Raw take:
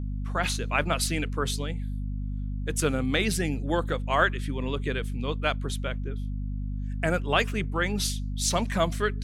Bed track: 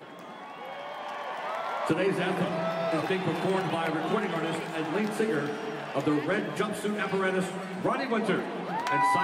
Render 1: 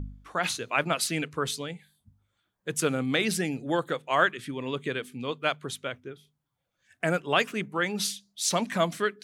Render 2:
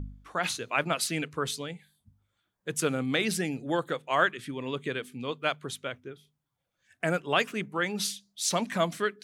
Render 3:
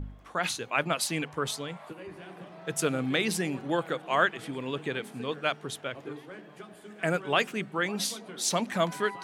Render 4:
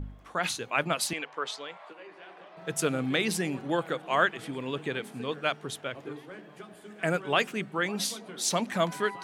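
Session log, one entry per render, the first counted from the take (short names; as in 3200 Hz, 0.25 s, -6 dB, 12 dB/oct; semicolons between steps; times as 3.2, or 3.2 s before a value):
de-hum 50 Hz, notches 5
gain -1.5 dB
add bed track -17 dB
1.13–2.57 BPF 510–4800 Hz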